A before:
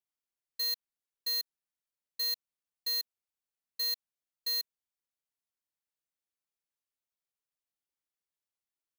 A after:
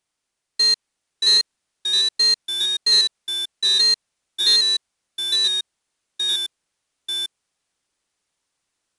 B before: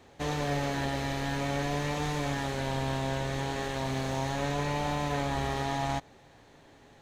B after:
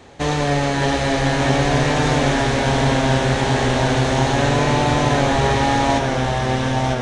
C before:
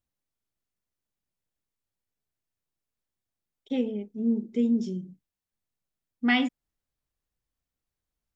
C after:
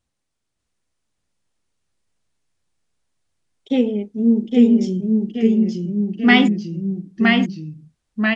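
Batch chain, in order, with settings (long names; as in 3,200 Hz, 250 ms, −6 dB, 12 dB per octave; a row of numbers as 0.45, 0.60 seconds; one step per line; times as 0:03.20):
delay with pitch and tempo change per echo 592 ms, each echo −1 semitone, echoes 3
downsampling to 22,050 Hz
loudness normalisation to −18 LKFS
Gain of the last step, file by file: +16.0, +11.5, +10.0 decibels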